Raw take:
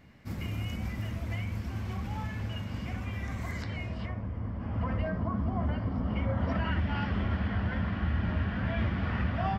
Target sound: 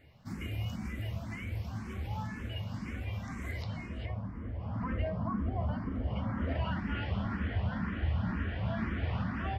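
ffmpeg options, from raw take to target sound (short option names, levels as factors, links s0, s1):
-filter_complex "[0:a]asplit=2[s0][s1];[s1]afreqshift=2[s2];[s0][s2]amix=inputs=2:normalize=1"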